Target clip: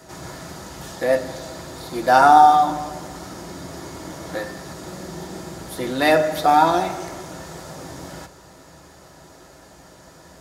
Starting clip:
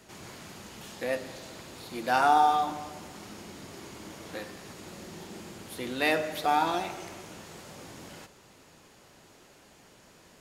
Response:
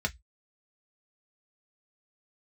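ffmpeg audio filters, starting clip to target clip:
-filter_complex "[0:a]asplit=2[s0][s1];[1:a]atrim=start_sample=2205,lowpass=5300[s2];[s1][s2]afir=irnorm=-1:irlink=0,volume=0.398[s3];[s0][s3]amix=inputs=2:normalize=0,volume=2.37"

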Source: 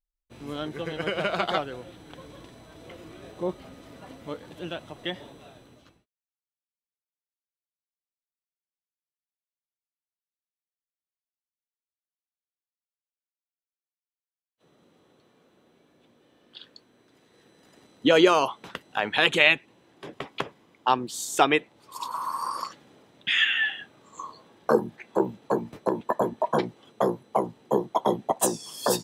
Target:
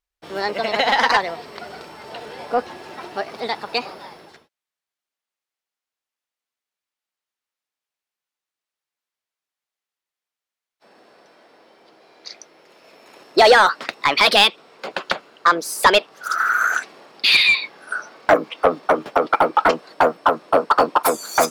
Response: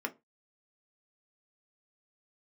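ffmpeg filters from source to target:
-filter_complex "[0:a]asetrate=59535,aresample=44100,asplit=2[s0][s1];[s1]highpass=f=720:p=1,volume=7.08,asoftclip=type=tanh:threshold=0.631[s2];[s0][s2]amix=inputs=2:normalize=0,lowpass=f=3300:p=1,volume=0.501,volume=1.33"

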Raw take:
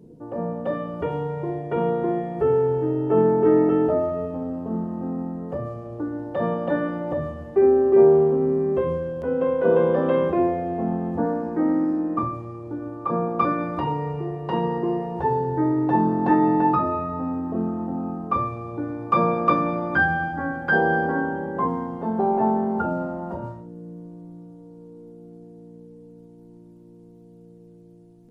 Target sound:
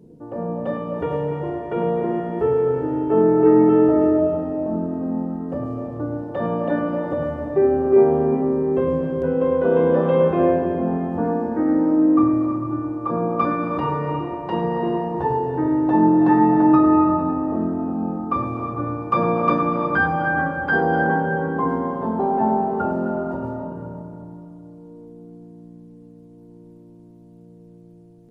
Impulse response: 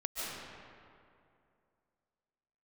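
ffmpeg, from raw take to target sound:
-filter_complex "[0:a]asplit=2[s0][s1];[s1]lowpass=3200[s2];[1:a]atrim=start_sample=2205,adelay=103[s3];[s2][s3]afir=irnorm=-1:irlink=0,volume=0.501[s4];[s0][s4]amix=inputs=2:normalize=0"

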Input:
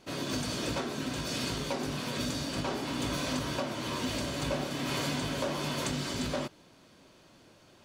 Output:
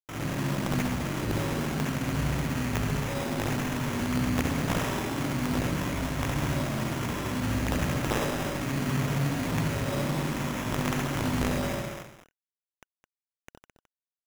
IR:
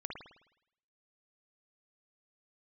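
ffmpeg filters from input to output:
-filter_complex "[0:a]atempo=0.55,bandreject=f=241.4:t=h:w=4,bandreject=f=482.8:t=h:w=4,bandreject=f=724.2:t=h:w=4,bandreject=f=965.6:t=h:w=4,bandreject=f=1207:t=h:w=4,bandreject=f=1448.4:t=h:w=4,bandreject=f=1689.8:t=h:w=4,bandreject=f=1931.2:t=h:w=4,bandreject=f=2172.6:t=h:w=4,bandreject=f=2414:t=h:w=4,bandreject=f=2655.4:t=h:w=4,bandreject=f=2896.8:t=h:w=4,bandreject=f=3138.2:t=h:w=4,bandreject=f=3379.6:t=h:w=4,bandreject=f=3621:t=h:w=4,bandreject=f=3862.4:t=h:w=4,bandreject=f=4103.8:t=h:w=4,bandreject=f=4345.2:t=h:w=4,bandreject=f=4586.6:t=h:w=4,bandreject=f=4828:t=h:w=4,alimiter=level_in=1.58:limit=0.0631:level=0:latency=1:release=24,volume=0.631,bass=f=250:g=12,treble=f=4000:g=-14,aresample=11025,aeval=exprs='(mod(11.9*val(0)+1,2)-1)/11.9':c=same,aresample=44100[s0];[1:a]atrim=start_sample=2205,afade=t=out:st=0.44:d=0.01,atrim=end_sample=19845,asetrate=35721,aresample=44100[s1];[s0][s1]afir=irnorm=-1:irlink=0,acrusher=bits=6:mix=0:aa=0.000001,highshelf=f=2800:g=10,bandreject=f=1500:w=17,acrusher=samples=10:mix=1:aa=0.000001,asplit=2[s2][s3];[s3]aecho=0:1:213:0.282[s4];[s2][s4]amix=inputs=2:normalize=0"

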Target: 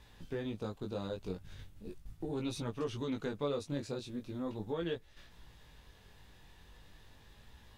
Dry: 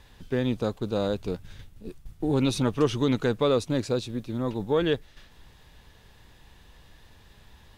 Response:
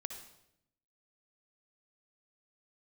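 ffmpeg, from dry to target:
-af "acompressor=threshold=0.0178:ratio=2,flanger=delay=17.5:depth=3.9:speed=0.39,volume=0.794"

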